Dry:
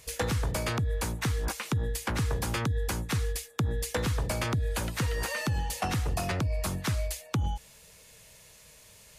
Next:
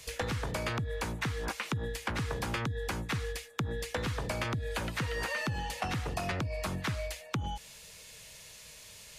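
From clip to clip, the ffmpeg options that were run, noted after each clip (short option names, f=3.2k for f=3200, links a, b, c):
-filter_complex "[0:a]equalizer=f=3.8k:w=0.53:g=6.5,acrossover=split=130|2600[a][b][c];[a]acompressor=threshold=-39dB:ratio=4[d];[b]acompressor=threshold=-32dB:ratio=4[e];[c]acompressor=threshold=-46dB:ratio=4[f];[d][e][f]amix=inputs=3:normalize=0"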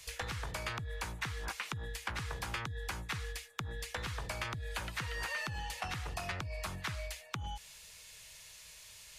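-af "equalizer=f=125:t=o:w=1:g=-4,equalizer=f=250:t=o:w=1:g=-10,equalizer=f=500:t=o:w=1:g=-6,volume=-2.5dB"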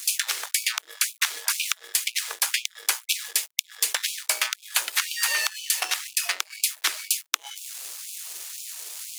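-af "crystalizer=i=9:c=0,aeval=exprs='sgn(val(0))*max(abs(val(0))-0.0158,0)':c=same,afftfilt=real='re*gte(b*sr/1024,290*pow(2300/290,0.5+0.5*sin(2*PI*2*pts/sr)))':imag='im*gte(b*sr/1024,290*pow(2300/290,0.5+0.5*sin(2*PI*2*pts/sr)))':win_size=1024:overlap=0.75,volume=6dB"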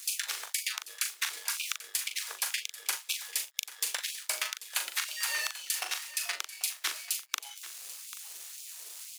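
-filter_complex "[0:a]asplit=2[a][b];[b]adelay=40,volume=-7.5dB[c];[a][c]amix=inputs=2:normalize=0,aecho=1:1:789:0.168,volume=-8.5dB"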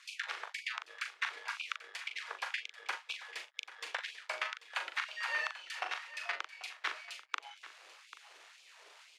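-af "highpass=380,lowpass=2k,volume=2.5dB"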